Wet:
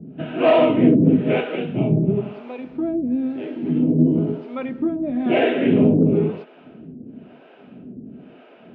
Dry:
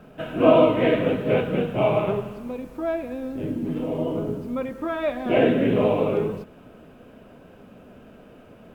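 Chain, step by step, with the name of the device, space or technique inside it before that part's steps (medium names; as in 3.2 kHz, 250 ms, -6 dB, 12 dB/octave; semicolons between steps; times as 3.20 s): 1.55–2.17 s: peaking EQ 1 kHz -5.5 dB 2.6 oct; guitar amplifier with harmonic tremolo (harmonic tremolo 1 Hz, depth 100%, crossover 440 Hz; saturation -13 dBFS, distortion -18 dB; cabinet simulation 100–3500 Hz, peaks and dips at 160 Hz +8 dB, 250 Hz +8 dB, 360 Hz +6 dB, 520 Hz -6 dB, 1.1 kHz -8 dB, 1.6 kHz -3 dB); trim +7.5 dB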